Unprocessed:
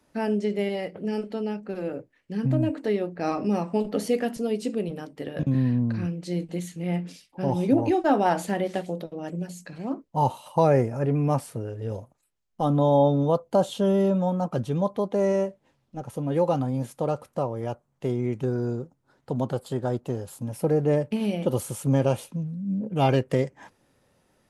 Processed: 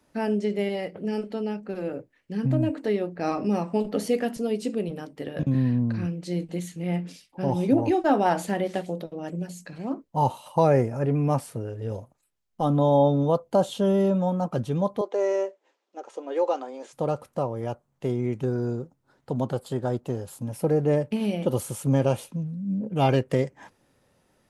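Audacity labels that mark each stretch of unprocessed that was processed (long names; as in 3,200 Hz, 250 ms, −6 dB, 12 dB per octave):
15.010000	16.930000	elliptic band-pass filter 370–7,300 Hz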